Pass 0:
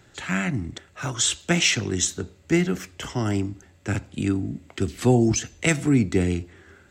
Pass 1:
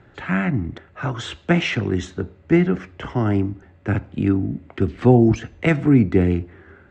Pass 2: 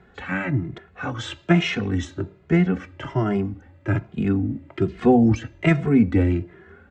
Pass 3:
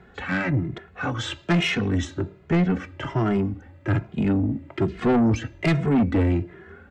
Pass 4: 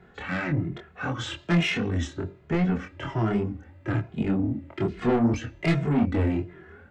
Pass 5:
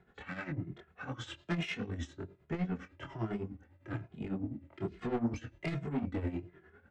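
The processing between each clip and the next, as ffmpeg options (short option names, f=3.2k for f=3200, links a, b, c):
-af "lowpass=1.8k,volume=5dB"
-filter_complex "[0:a]asplit=2[a][b];[b]adelay=2.4,afreqshift=1.2[c];[a][c]amix=inputs=2:normalize=1,volume=1.5dB"
-af "asoftclip=type=tanh:threshold=-18dB,volume=2.5dB"
-af "flanger=delay=22.5:depth=4.6:speed=2.6"
-af "tremolo=f=9.9:d=0.7,volume=-9dB"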